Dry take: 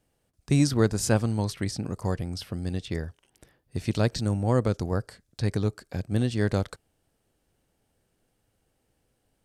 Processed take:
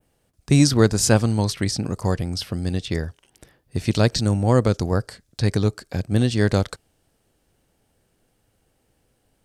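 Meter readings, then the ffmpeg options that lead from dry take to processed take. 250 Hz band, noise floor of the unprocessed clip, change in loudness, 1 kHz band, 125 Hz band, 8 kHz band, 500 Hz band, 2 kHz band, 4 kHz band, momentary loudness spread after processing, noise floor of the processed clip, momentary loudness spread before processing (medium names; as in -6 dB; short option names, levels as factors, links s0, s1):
+6.0 dB, -74 dBFS, +6.5 dB, +6.5 dB, +6.0 dB, +9.0 dB, +6.0 dB, +7.0 dB, +9.5 dB, 11 LU, -68 dBFS, 11 LU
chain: -af "adynamicequalizer=threshold=0.00501:dfrequency=5200:dqfactor=0.73:tfrequency=5200:tqfactor=0.73:attack=5:release=100:ratio=0.375:range=2:mode=boostabove:tftype=bell,volume=2"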